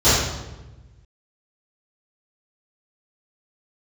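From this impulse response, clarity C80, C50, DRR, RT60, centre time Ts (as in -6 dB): 2.5 dB, -1.5 dB, -17.0 dB, 1.1 s, 80 ms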